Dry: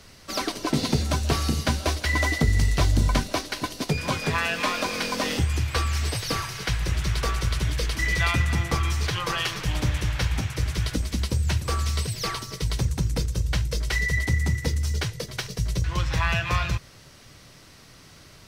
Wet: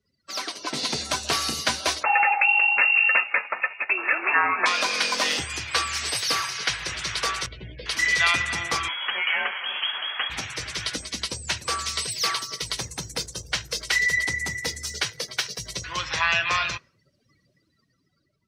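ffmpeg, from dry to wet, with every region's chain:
ffmpeg -i in.wav -filter_complex "[0:a]asettb=1/sr,asplit=3[link_01][link_02][link_03];[link_01]atrim=end=2.034[link_04];[link_02]atrim=start=2.03:end=4.66,asetpts=PTS-STARTPTS,afade=type=in:duration=0.004:curve=qsin,afade=type=out:start_time=2.626:duration=0.004:curve=qsin,tiltshelf=frequency=770:gain=-6.5,lowpass=frequency=2400:width_type=q:width=0.5098,lowpass=frequency=2400:width_type=q:width=0.6013,lowpass=frequency=2400:width_type=q:width=0.9,lowpass=frequency=2400:width_type=q:width=2.563,afreqshift=-2800[link_05];[link_03]atrim=start=4.656[link_06];[link_04][link_05]acrossfade=duration=0.004:curve1=hsin:curve2=qsin[link_07];[link_07][link_06]acrossfade=duration=0.004:curve1=qsin:curve2=hsin,asettb=1/sr,asplit=3[link_08][link_09][link_10];[link_08]atrim=end=7.464[link_11];[link_09]atrim=start=7.46:end=7.86,asetpts=PTS-STARTPTS,afade=type=in:duration=0.004:curve=qsin,afade=type=out:start_time=0.396:duration=0.004:curve=qsin,lowpass=2200,equalizer=frequency=1200:width_type=o:width=1.9:gain=-15,asplit=2[link_12][link_13];[link_13]adelay=16,volume=-5.5dB[link_14];[link_12][link_14]amix=inputs=2:normalize=0,atrim=end_sample=17640[link_15];[link_10]atrim=start=7.856[link_16];[link_11][link_15]acrossfade=duration=0.004:curve1=hsin:curve2=qsin[link_17];[link_17][link_16]acrossfade=duration=0.004:curve1=qsin:curve2=hsin,asettb=1/sr,asplit=3[link_18][link_19][link_20];[link_18]atrim=end=8.884[link_21];[link_19]atrim=start=8.88:end=10.3,asetpts=PTS-STARTPTS,afade=type=in:duration=0.004:curve=qsin,afade=type=out:start_time=1.416:duration=0.004:curve=qsin,highpass=frequency=420:poles=1,lowpass=frequency=2900:width_type=q:width=0.5098,lowpass=frequency=2900:width_type=q:width=0.6013,lowpass=frequency=2900:width_type=q:width=0.9,lowpass=frequency=2900:width_type=q:width=2.563,afreqshift=-3400[link_22];[link_20]atrim=start=10.296[link_23];[link_21][link_22]acrossfade=duration=0.004:curve1=hsin:curve2=qsin[link_24];[link_24][link_23]acrossfade=duration=0.004:curve1=qsin:curve2=hsin,asettb=1/sr,asplit=3[link_25][link_26][link_27];[link_25]atrim=end=12.204[link_28];[link_26]atrim=start=12.2:end=16.01,asetpts=PTS-STARTPTS,afade=type=in:duration=0.004:curve=qsin,afade=type=out:start_time=3.806:duration=0.004:curve=qsin,highshelf=frequency=12000:gain=2.5,acrusher=bits=8:dc=4:mix=0:aa=0.000001[link_29];[link_27]atrim=start=16.006[link_30];[link_28][link_29]acrossfade=duration=0.004:curve1=hsin:curve2=qsin[link_31];[link_31][link_30]acrossfade=duration=0.004:curve1=qsin:curve2=hsin,afftdn=noise_reduction=34:noise_floor=-44,highpass=frequency=1400:poles=1,dynaudnorm=framelen=150:gausssize=11:maxgain=7dB" out.wav

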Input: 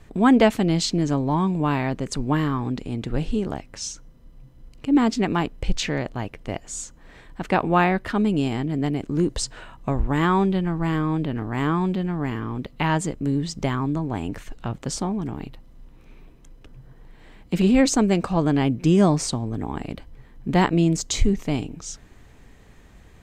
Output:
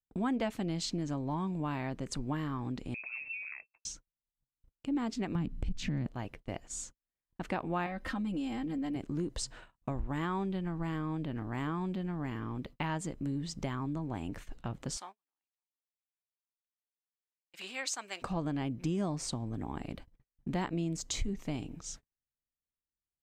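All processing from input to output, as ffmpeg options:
ffmpeg -i in.wav -filter_complex "[0:a]asettb=1/sr,asplit=3[link_01][link_02][link_03];[link_01]atrim=end=2.944[link_04];[link_02]atrim=start=2.94:end=3.85,asetpts=PTS-STARTPTS,afade=type=in:duration=0.004:curve=qsin,afade=type=out:start_time=0.906:duration=0.004:curve=qsin,acompressor=threshold=-29dB:ratio=16:attack=3.2:release=140:knee=1:detection=peak,lowpass=frequency=2300:width_type=q:width=0.5098,lowpass=frequency=2300:width_type=q:width=0.6013,lowpass=frequency=2300:width_type=q:width=0.9,lowpass=frequency=2300:width_type=q:width=2.563,afreqshift=-2700[link_05];[link_03]atrim=start=3.846[link_06];[link_04][link_05]acrossfade=duration=0.004:curve1=hsin:curve2=qsin[link_07];[link_07][link_06]acrossfade=duration=0.004:curve1=qsin:curve2=hsin,asettb=1/sr,asplit=3[link_08][link_09][link_10];[link_08]atrim=end=5.354[link_11];[link_09]atrim=start=5.35:end=6.07,asetpts=PTS-STARTPTS,afade=type=in:duration=0.004:curve=qsin,afade=type=out:start_time=0.716:duration=0.004:curve=qsin,lowshelf=frequency=330:width_type=q:width=1.5:gain=13.5,acompressor=threshold=-16dB:ratio=3:attack=3.2:release=140:knee=1:detection=peak[link_12];[link_10]atrim=start=6.066[link_13];[link_11][link_12]acrossfade=duration=0.004:curve1=hsin:curve2=qsin[link_14];[link_14][link_13]acrossfade=duration=0.004:curve1=qsin:curve2=hsin,asettb=1/sr,asplit=3[link_15][link_16][link_17];[link_15]atrim=end=7.864[link_18];[link_16]atrim=start=7.86:end=8.96,asetpts=PTS-STARTPTS,afade=type=in:duration=0.004:curve=qsin,afade=type=out:start_time=1.096:duration=0.004:curve=qsin,aecho=1:1:3.8:0.95,atrim=end_sample=48510,acompressor=threshold=-24dB:ratio=2.5:attack=3.2:release=140:knee=1:detection=peak[link_19];[link_17]atrim=start=8.956[link_20];[link_18][link_19]acrossfade=duration=0.004:curve1=hsin:curve2=qsin[link_21];[link_21][link_20]acrossfade=duration=0.004:curve1=qsin:curve2=hsin,asettb=1/sr,asplit=3[link_22][link_23][link_24];[link_22]atrim=end=14.974[link_25];[link_23]atrim=start=14.97:end=18.22,asetpts=PTS-STARTPTS,afade=type=in:duration=0.004:curve=qsin,afade=type=out:start_time=3.246:duration=0.004:curve=qsin,highpass=1200,aecho=1:1:559:0.133,atrim=end_sample=143325[link_26];[link_24]atrim=start=18.216[link_27];[link_25][link_26]acrossfade=duration=0.004:curve1=hsin:curve2=qsin[link_28];[link_28][link_27]acrossfade=duration=0.004:curve1=qsin:curve2=hsin,agate=range=-45dB:threshold=-38dB:ratio=16:detection=peak,bandreject=frequency=430:width=12,acompressor=threshold=-25dB:ratio=2.5,volume=-8dB" out.wav

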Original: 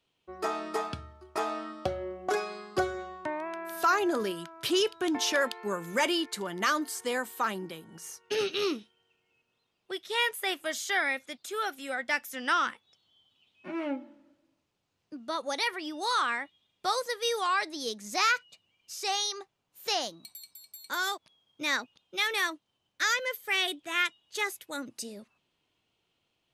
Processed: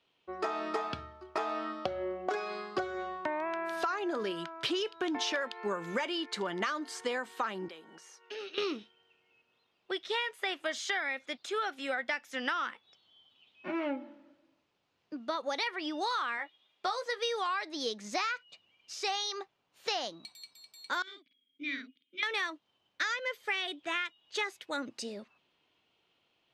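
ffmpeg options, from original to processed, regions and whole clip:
ffmpeg -i in.wav -filter_complex "[0:a]asettb=1/sr,asplit=3[link_01][link_02][link_03];[link_01]atrim=end=7.684[link_04];[link_02]atrim=start=7.68:end=8.58,asetpts=PTS-STARTPTS,afade=type=in:duration=0.004:curve=qsin,afade=type=out:start_time=0.896:duration=0.004:curve=qsin,highpass=310,acompressor=threshold=-54dB:ratio=2:attack=3.2:release=140:knee=1:detection=peak[link_05];[link_03]atrim=start=8.576[link_06];[link_04][link_05]acrossfade=duration=0.004:curve1=hsin:curve2=qsin[link_07];[link_07][link_06]acrossfade=duration=0.004:curve1=qsin:curve2=hsin,asettb=1/sr,asplit=3[link_08][link_09][link_10];[link_08]atrim=end=16.374[link_11];[link_09]atrim=start=16.37:end=17.19,asetpts=PTS-STARTPTS,afade=type=in:duration=0.004:curve=qsin,afade=type=out:start_time=0.816:duration=0.004:curve=qsin,bass=frequency=250:gain=-11,treble=frequency=4000:gain=-1,asplit=2[link_12][link_13];[link_13]adelay=13,volume=-7dB[link_14];[link_12][link_14]amix=inputs=2:normalize=0,atrim=end_sample=36162[link_15];[link_10]atrim=start=17.186[link_16];[link_11][link_15]acrossfade=duration=0.004:curve1=hsin:curve2=qsin[link_17];[link_17][link_16]acrossfade=duration=0.004:curve1=qsin:curve2=hsin,asettb=1/sr,asplit=3[link_18][link_19][link_20];[link_18]atrim=end=21.024[link_21];[link_19]atrim=start=21.02:end=22.23,asetpts=PTS-STARTPTS,afade=type=in:duration=0.004:curve=qsin,afade=type=out:start_time=1.206:duration=0.004:curve=qsin,asplit=3[link_22][link_23][link_24];[link_22]bandpass=frequency=270:width_type=q:width=8,volume=0dB[link_25];[link_23]bandpass=frequency=2290:width_type=q:width=8,volume=-6dB[link_26];[link_24]bandpass=frequency=3010:width_type=q:width=8,volume=-9dB[link_27];[link_25][link_26][link_27]amix=inputs=3:normalize=0,asplit=2[link_28][link_29];[link_29]adelay=50,volume=-4dB[link_30];[link_28][link_30]amix=inputs=2:normalize=0,atrim=end_sample=53361[link_31];[link_20]atrim=start=22.226[link_32];[link_21][link_31]acrossfade=duration=0.004:curve1=hsin:curve2=qsin[link_33];[link_33][link_32]acrossfade=duration=0.004:curve1=qsin:curve2=hsin,lowpass=4400,lowshelf=frequency=170:gain=-11.5,acompressor=threshold=-34dB:ratio=12,volume=4.5dB" out.wav

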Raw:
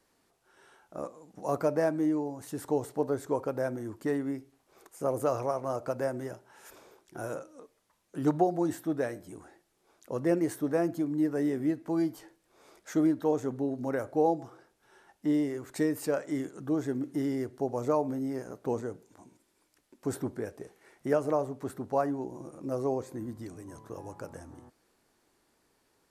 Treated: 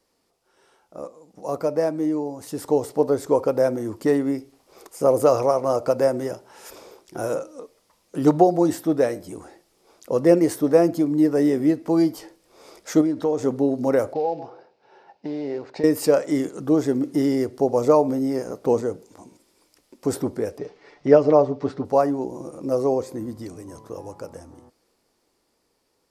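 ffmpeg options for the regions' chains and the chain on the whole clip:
ffmpeg -i in.wav -filter_complex "[0:a]asettb=1/sr,asplit=3[link_01][link_02][link_03];[link_01]atrim=end=13.014[link_04];[link_02]atrim=start=13.01:end=13.43,asetpts=PTS-STARTPTS,afade=type=in:duration=0.004:curve=qsin,afade=type=out:start_time=0.416:duration=0.004:curve=qsin,lowpass=9000,acompressor=threshold=-31dB:ratio=3:attack=3.2:release=140:knee=1:detection=peak[link_05];[link_03]atrim=start=13.426[link_06];[link_04][link_05]acrossfade=duration=0.004:curve1=hsin:curve2=qsin[link_07];[link_07][link_06]acrossfade=duration=0.004:curve1=qsin:curve2=hsin,asettb=1/sr,asplit=3[link_08][link_09][link_10];[link_08]atrim=end=14.134[link_11];[link_09]atrim=start=14.13:end=15.84,asetpts=PTS-STARTPTS,afade=type=in:duration=0.004:curve=qsin,afade=type=out:start_time=1.706:duration=0.004:curve=qsin,acompressor=threshold=-31dB:ratio=6:attack=3.2:release=140:knee=1:detection=peak,acrusher=bits=5:mode=log:mix=0:aa=0.000001,highpass=170,equalizer=frequency=220:width_type=q:width=4:gain=-7,equalizer=frequency=320:width_type=q:width=4:gain=-7,equalizer=frequency=820:width_type=q:width=4:gain=4,equalizer=frequency=1200:width_type=q:width=4:gain=-9,equalizer=frequency=2000:width_type=q:width=4:gain=-6,equalizer=frequency=3300:width_type=q:width=4:gain=-10,lowpass=frequency=3900:width=0.5412,lowpass=frequency=3900:width=1.3066[link_12];[link_10]atrim=start=15.836[link_13];[link_11][link_12]acrossfade=duration=0.004:curve1=hsin:curve2=qsin[link_14];[link_14][link_13]acrossfade=duration=0.004:curve1=qsin:curve2=hsin,asettb=1/sr,asplit=3[link_15][link_16][link_17];[link_15]atrim=end=20.584[link_18];[link_16]atrim=start=20.58:end=21.85,asetpts=PTS-STARTPTS,afade=type=in:duration=0.004:curve=qsin,afade=type=out:start_time=1.266:duration=0.004:curve=qsin,lowpass=frequency=5100:width=0.5412,lowpass=frequency=5100:width=1.3066,aecho=1:1:6.9:0.63,atrim=end_sample=56007[link_19];[link_17]atrim=start=21.846[link_20];[link_18][link_19]acrossfade=duration=0.004:curve1=hsin:curve2=qsin[link_21];[link_21][link_20]acrossfade=duration=0.004:curve1=qsin:curve2=hsin,equalizer=frequency=125:width_type=o:width=0.33:gain=-4,equalizer=frequency=500:width_type=o:width=0.33:gain=5,equalizer=frequency=1600:width_type=o:width=0.33:gain=-6,equalizer=frequency=5000:width_type=o:width=0.33:gain=6,dynaudnorm=framelen=390:gausssize=13:maxgain=10.5dB" out.wav

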